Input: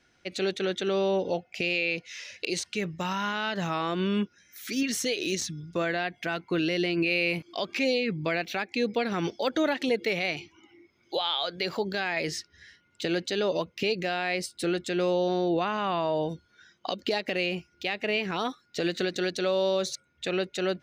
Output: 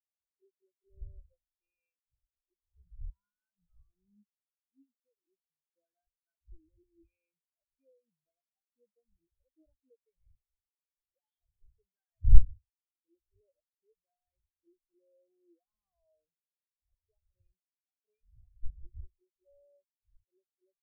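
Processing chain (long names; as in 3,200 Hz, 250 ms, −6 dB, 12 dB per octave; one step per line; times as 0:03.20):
one-sided soft clipper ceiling −20.5 dBFS
wind on the microphone 84 Hz −29 dBFS
every bin expanded away from the loudest bin 4 to 1
level +3 dB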